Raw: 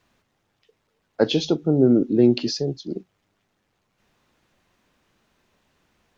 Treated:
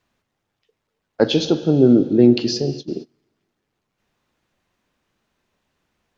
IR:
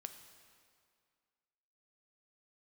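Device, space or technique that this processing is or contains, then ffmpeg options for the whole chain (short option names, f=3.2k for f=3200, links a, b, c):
keyed gated reverb: -filter_complex "[0:a]asplit=3[a][b][c];[1:a]atrim=start_sample=2205[d];[b][d]afir=irnorm=-1:irlink=0[e];[c]apad=whole_len=272433[f];[e][f]sidechaingate=range=-27dB:threshold=-33dB:ratio=16:detection=peak,volume=10.5dB[g];[a][g]amix=inputs=2:normalize=0,volume=-6dB"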